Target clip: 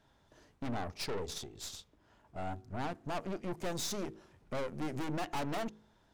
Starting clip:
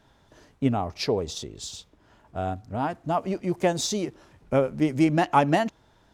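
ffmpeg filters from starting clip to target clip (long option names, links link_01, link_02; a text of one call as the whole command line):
ffmpeg -i in.wav -filter_complex "[0:a]asplit=2[link_01][link_02];[link_02]aeval=exprs='sgn(val(0))*max(abs(val(0))-0.0188,0)':channel_layout=same,volume=-11.5dB[link_03];[link_01][link_03]amix=inputs=2:normalize=0,aeval=exprs='(tanh(35.5*val(0)+0.75)-tanh(0.75))/35.5':channel_layout=same,bandreject=frequency=53.48:width_type=h:width=4,bandreject=frequency=106.96:width_type=h:width=4,bandreject=frequency=160.44:width_type=h:width=4,bandreject=frequency=213.92:width_type=h:width=4,bandreject=frequency=267.4:width_type=h:width=4,bandreject=frequency=320.88:width_type=h:width=4,bandreject=frequency=374.36:width_type=h:width=4,bandreject=frequency=427.84:width_type=h:width=4,bandreject=frequency=481.32:width_type=h:width=4,volume=-3.5dB" out.wav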